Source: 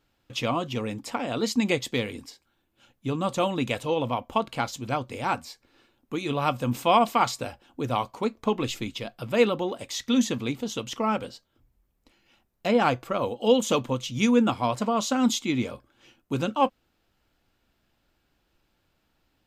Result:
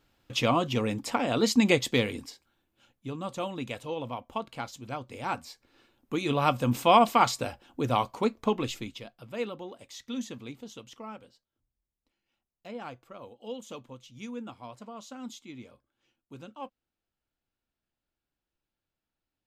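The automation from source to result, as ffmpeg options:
-af "volume=11dB,afade=t=out:st=2:d=1.11:silence=0.298538,afade=t=in:st=4.98:d=1.24:silence=0.354813,afade=t=out:st=8.24:d=0.92:silence=0.223872,afade=t=out:st=10.63:d=0.61:silence=0.501187"

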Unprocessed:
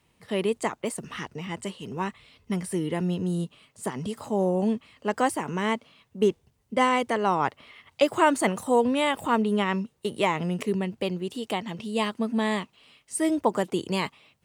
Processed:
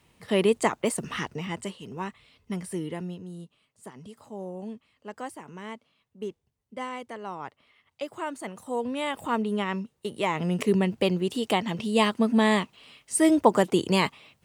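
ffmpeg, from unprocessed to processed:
-af "volume=21.5dB,afade=t=out:st=1.16:d=0.69:silence=0.398107,afade=t=out:st=2.81:d=0.42:silence=0.354813,afade=t=in:st=8.49:d=0.82:silence=0.334965,afade=t=in:st=10.23:d=0.53:silence=0.398107"

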